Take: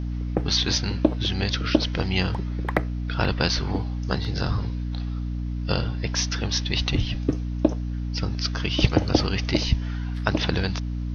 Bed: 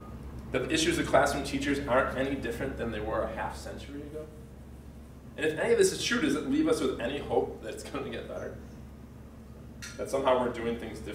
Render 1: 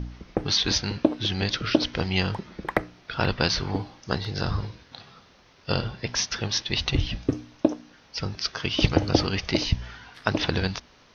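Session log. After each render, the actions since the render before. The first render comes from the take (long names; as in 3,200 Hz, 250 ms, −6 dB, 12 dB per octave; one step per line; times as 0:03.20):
hum removal 60 Hz, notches 5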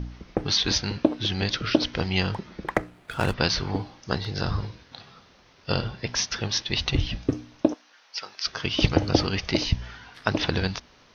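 0:02.74–0:03.34: running median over 9 samples
0:07.74–0:08.47: high-pass filter 820 Hz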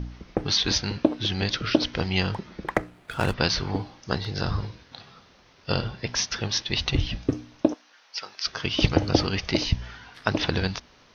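no processing that can be heard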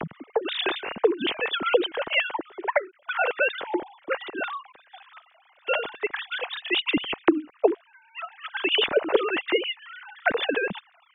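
three sine waves on the formant tracks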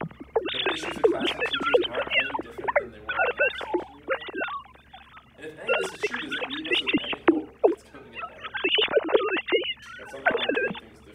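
mix in bed −10.5 dB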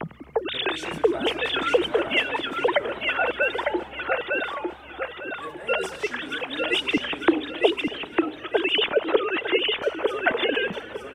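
repeating echo 903 ms, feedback 27%, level −3.5 dB
feedback echo with a swinging delay time 264 ms, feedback 57%, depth 164 cents, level −20 dB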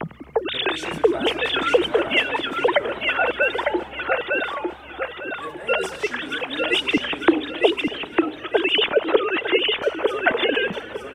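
level +3 dB
brickwall limiter −3 dBFS, peak gain reduction 1 dB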